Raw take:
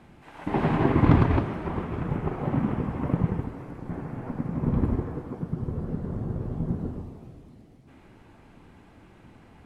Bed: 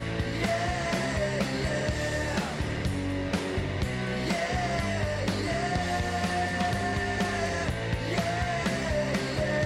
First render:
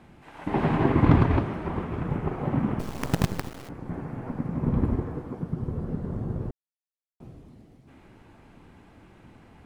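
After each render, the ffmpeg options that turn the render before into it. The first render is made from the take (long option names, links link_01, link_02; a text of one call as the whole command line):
ffmpeg -i in.wav -filter_complex "[0:a]asettb=1/sr,asplit=3[link_01][link_02][link_03];[link_01]atrim=end=2.794[link_04];[link_02]atrim=start=2.79:end=3.69,asetpts=PTS-STARTPTS,afade=type=in:duration=0.004:curve=qsin,afade=type=out:start_time=0.896:duration=0.004:curve=qsin,acrusher=bits=4:dc=4:mix=0:aa=0.000001[link_05];[link_03]atrim=start=3.686[link_06];[link_04][link_05]acrossfade=duration=0.004:curve1=hsin:curve2=qsin[link_07];[link_07][link_06]acrossfade=duration=0.004:curve1=qsin:curve2=hsin,asplit=3[link_08][link_09][link_10];[link_08]atrim=end=6.51,asetpts=PTS-STARTPTS,afade=type=out:start_time=6.506:duration=0.004:curve=hsin[link_11];[link_09]atrim=start=6.51:end=7.2,asetpts=PTS-STARTPTS,volume=0[link_12];[link_10]atrim=start=7.2,asetpts=PTS-STARTPTS,afade=type=in:duration=0.004:curve=hsin[link_13];[link_11][link_12][link_13]concat=n=3:v=0:a=1" out.wav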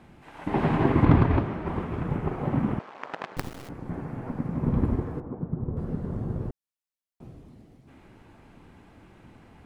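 ffmpeg -i in.wav -filter_complex "[0:a]asettb=1/sr,asplit=3[link_01][link_02][link_03];[link_01]atrim=end=1.054[link_04];[link_02]atrim=start=1.05:end=1.67,asetpts=PTS-STARTPTS,afade=type=in:duration=0.004:curve=qsin,afade=type=out:start_time=0.616:duration=0.004:curve=qsin,lowpass=frequency=3900:poles=1[link_05];[link_03]atrim=start=1.666[link_06];[link_04][link_05]acrossfade=duration=0.004:curve1=hsin:curve2=qsin[link_07];[link_07][link_06]acrossfade=duration=0.004:curve1=qsin:curve2=hsin,asettb=1/sr,asplit=3[link_08][link_09][link_10];[link_08]atrim=end=2.794[link_11];[link_09]atrim=start=2.79:end=3.37,asetpts=PTS-STARTPTS,afade=type=in:duration=0.004:curve=qsin,afade=type=out:start_time=0.576:duration=0.004:curve=qsin,highpass=710,lowpass=2100[link_12];[link_10]atrim=start=3.366[link_13];[link_11][link_12]acrossfade=duration=0.004:curve1=hsin:curve2=qsin[link_14];[link_14][link_13]acrossfade=duration=0.004:curve1=qsin:curve2=hsin,asettb=1/sr,asplit=3[link_15][link_16][link_17];[link_15]atrim=end=5.204[link_18];[link_16]atrim=start=5.2:end=5.77,asetpts=PTS-STARTPTS,afade=type=in:duration=0.004:curve=qsin,afade=type=out:start_time=0.566:duration=0.004:curve=qsin,lowpass=1100[link_19];[link_17]atrim=start=5.766[link_20];[link_18][link_19]acrossfade=duration=0.004:curve1=hsin:curve2=qsin[link_21];[link_21][link_20]acrossfade=duration=0.004:curve1=qsin:curve2=hsin" out.wav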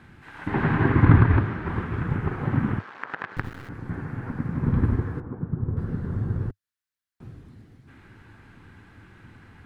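ffmpeg -i in.wav -filter_complex "[0:a]acrossover=split=2800[link_01][link_02];[link_02]acompressor=threshold=-55dB:ratio=4:attack=1:release=60[link_03];[link_01][link_03]amix=inputs=2:normalize=0,equalizer=frequency=100:width_type=o:width=0.67:gain=8,equalizer=frequency=630:width_type=o:width=0.67:gain=-7,equalizer=frequency=1600:width_type=o:width=0.67:gain=10,equalizer=frequency=4000:width_type=o:width=0.67:gain=3" out.wav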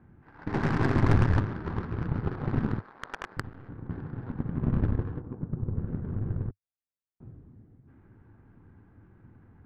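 ffmpeg -i in.wav -af "aeval=exprs='(tanh(7.08*val(0)+0.75)-tanh(0.75))/7.08':channel_layout=same,adynamicsmooth=sensitivity=3:basefreq=870" out.wav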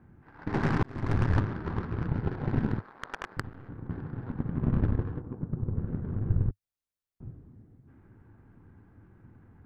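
ffmpeg -i in.wav -filter_complex "[0:a]asettb=1/sr,asplit=3[link_01][link_02][link_03];[link_01]atrim=end=2.114[link_04];[link_02]atrim=start=2.11:end=2.77,asetpts=PTS-STARTPTS,afade=type=in:duration=0.004:curve=qsin,afade=type=out:start_time=0.656:duration=0.004:curve=qsin,bandreject=frequency=1200:width=6.4[link_05];[link_03]atrim=start=2.766[link_06];[link_04][link_05]acrossfade=duration=0.004:curve1=hsin:curve2=qsin[link_07];[link_07][link_06]acrossfade=duration=0.004:curve1=qsin:curve2=hsin,asettb=1/sr,asplit=3[link_08][link_09][link_10];[link_08]atrim=end=6.294[link_11];[link_09]atrim=start=6.29:end=7.32,asetpts=PTS-STARTPTS,afade=type=in:duration=0.004:curve=qsin,afade=type=out:start_time=1.026:duration=0.004:curve=qsin,lowshelf=frequency=110:gain=10[link_12];[link_10]atrim=start=7.316[link_13];[link_11][link_12]acrossfade=duration=0.004:curve1=hsin:curve2=qsin[link_14];[link_14][link_13]acrossfade=duration=0.004:curve1=qsin:curve2=hsin,asplit=2[link_15][link_16];[link_15]atrim=end=0.83,asetpts=PTS-STARTPTS,afade=type=out:start_time=0.826:duration=0.004:curve=hsin[link_17];[link_16]atrim=start=0.83,asetpts=PTS-STARTPTS,afade=type=in:duration=0.58[link_18];[link_17][link_18]concat=n=2:v=0:a=1" out.wav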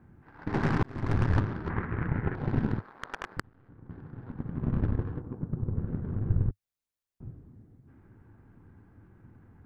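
ffmpeg -i in.wav -filter_complex "[0:a]asettb=1/sr,asplit=3[link_01][link_02][link_03];[link_01]atrim=end=1.694[link_04];[link_02]atrim=start=1.69:end=2.35,asetpts=PTS-STARTPTS,afade=type=in:duration=0.004:curve=qsin,afade=type=out:start_time=0.656:duration=0.004:curve=qsin,lowpass=frequency=2000:width_type=q:width=2.9[link_05];[link_03]atrim=start=2.346[link_06];[link_04][link_05]acrossfade=duration=0.004:curve1=hsin:curve2=qsin[link_07];[link_07][link_06]acrossfade=duration=0.004:curve1=qsin:curve2=hsin,asplit=2[link_08][link_09];[link_08]atrim=end=3.4,asetpts=PTS-STARTPTS,afade=type=out:start_time=3.396:duration=0.004:curve=hsin:silence=0.125893[link_10];[link_09]atrim=start=3.4,asetpts=PTS-STARTPTS,afade=type=in:duration=1.81:silence=0.125893[link_11];[link_10][link_11]concat=n=2:v=0:a=1" out.wav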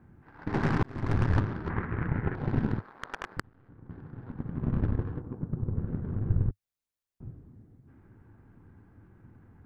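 ffmpeg -i in.wav -af anull out.wav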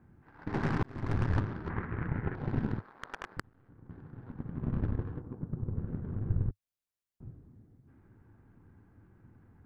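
ffmpeg -i in.wav -af "volume=-4dB" out.wav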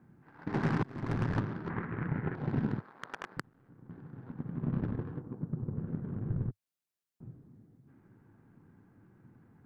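ffmpeg -i in.wav -af "lowshelf=frequency=100:width_type=q:width=1.5:gain=-10.5" out.wav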